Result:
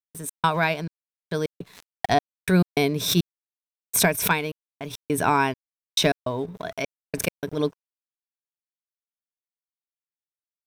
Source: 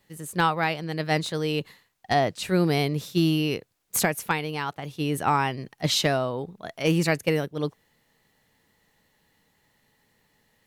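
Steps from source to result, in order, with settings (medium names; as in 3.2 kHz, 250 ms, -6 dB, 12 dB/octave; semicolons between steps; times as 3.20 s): rippled EQ curve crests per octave 1.6, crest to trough 9 dB; trance gate ".x.xxx...x.xxxx." 103 bpm -60 dB; crossover distortion -54 dBFS; swell ahead of each attack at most 80 dB/s; trim +2 dB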